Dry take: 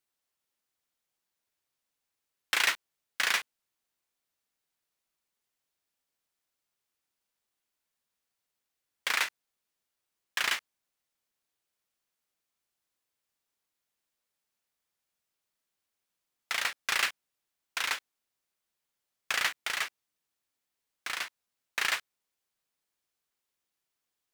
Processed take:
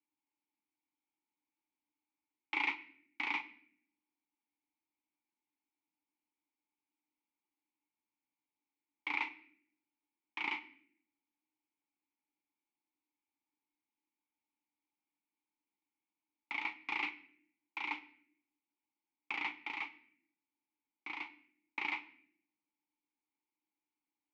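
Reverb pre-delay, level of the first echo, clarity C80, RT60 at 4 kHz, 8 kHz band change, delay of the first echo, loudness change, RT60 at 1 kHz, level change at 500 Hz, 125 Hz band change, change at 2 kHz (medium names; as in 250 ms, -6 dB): 3 ms, no echo, 19.0 dB, 0.50 s, under -30 dB, no echo, -8.5 dB, 0.55 s, -11.5 dB, no reading, -8.0 dB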